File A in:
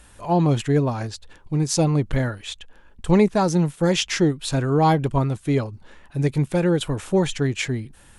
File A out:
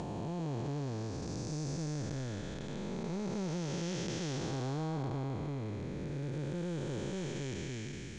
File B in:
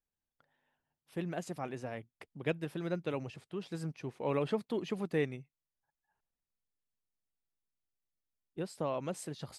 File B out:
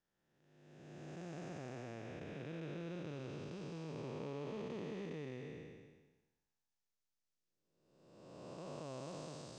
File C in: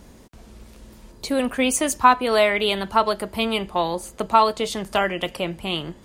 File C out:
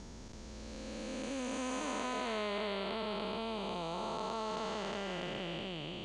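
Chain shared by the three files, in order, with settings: spectral blur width 823 ms; compression 2:1, threshold -42 dBFS; four-pole ladder low-pass 7.3 kHz, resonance 45%; trim +8 dB

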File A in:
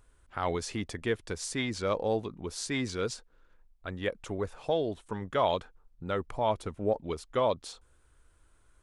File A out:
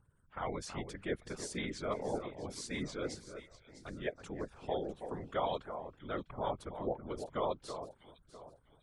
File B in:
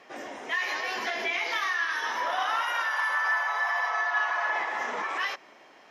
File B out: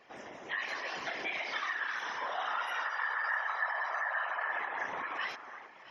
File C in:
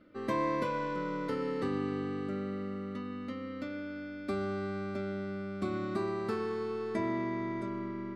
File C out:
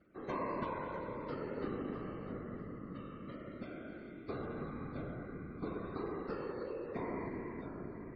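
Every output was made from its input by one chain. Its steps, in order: spectral gate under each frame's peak -30 dB strong; echo whose repeats swap between lows and highs 325 ms, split 1.8 kHz, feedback 57%, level -9 dB; whisper effect; trim -7.5 dB

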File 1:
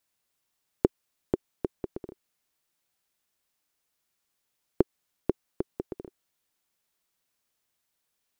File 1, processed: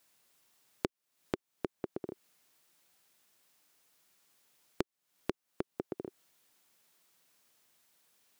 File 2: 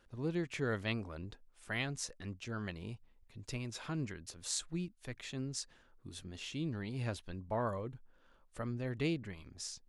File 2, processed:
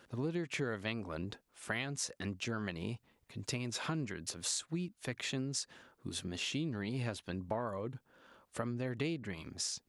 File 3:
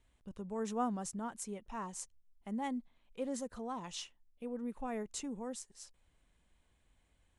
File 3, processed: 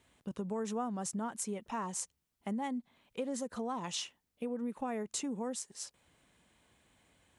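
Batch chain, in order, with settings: high-pass 120 Hz 12 dB/octave; compression 6:1, threshold -43 dBFS; trim +9 dB

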